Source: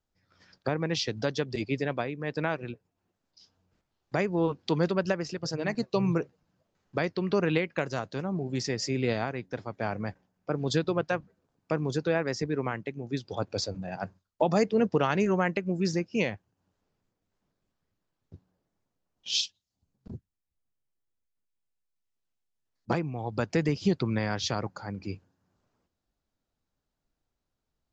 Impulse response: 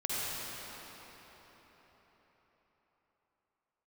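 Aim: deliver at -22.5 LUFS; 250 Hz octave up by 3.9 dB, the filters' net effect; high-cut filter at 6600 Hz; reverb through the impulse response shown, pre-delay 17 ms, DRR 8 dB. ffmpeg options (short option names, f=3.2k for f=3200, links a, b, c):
-filter_complex "[0:a]lowpass=6.6k,equalizer=f=250:t=o:g=5.5,asplit=2[a][b];[1:a]atrim=start_sample=2205,adelay=17[c];[b][c]afir=irnorm=-1:irlink=0,volume=-15.5dB[d];[a][d]amix=inputs=2:normalize=0,volume=5.5dB"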